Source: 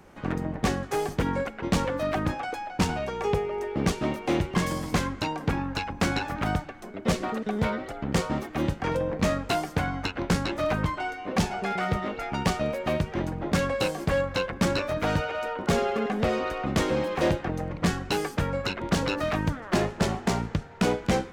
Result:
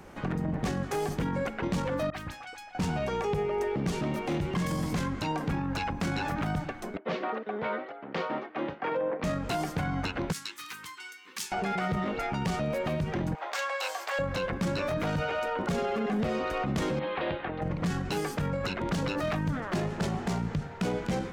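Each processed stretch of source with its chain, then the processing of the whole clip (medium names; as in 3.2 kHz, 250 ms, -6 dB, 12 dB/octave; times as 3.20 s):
2.10–2.75 s: amplifier tone stack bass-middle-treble 5-5-5 + phase dispersion highs, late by 43 ms, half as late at 1.9 kHz
6.97–9.24 s: band-pass 390–3700 Hz + distance through air 180 m + three bands expanded up and down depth 100%
10.32–11.52 s: Butterworth band-stop 640 Hz, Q 1.3 + differentiator
13.35–14.19 s: high-pass 710 Hz 24 dB/octave + peaking EQ 10 kHz -12.5 dB 0.23 oct + upward compressor, threshold -41 dBFS
16.99–17.62 s: steep low-pass 3.9 kHz 48 dB/octave + bass shelf 330 Hz -11.5 dB + compression 1.5:1, threshold -38 dBFS
whole clip: dynamic bell 160 Hz, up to +8 dB, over -40 dBFS, Q 1.6; peak limiter -26 dBFS; trim +3.5 dB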